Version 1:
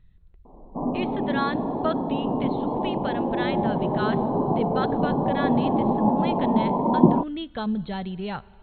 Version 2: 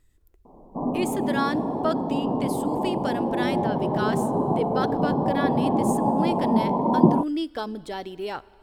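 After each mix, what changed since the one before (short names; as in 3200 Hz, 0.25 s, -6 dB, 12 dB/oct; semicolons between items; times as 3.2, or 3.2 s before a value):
speech: add resonant low shelf 240 Hz -7.5 dB, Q 3; master: remove brick-wall FIR low-pass 4300 Hz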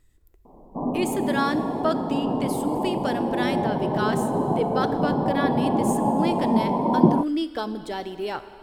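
speech: send +10.5 dB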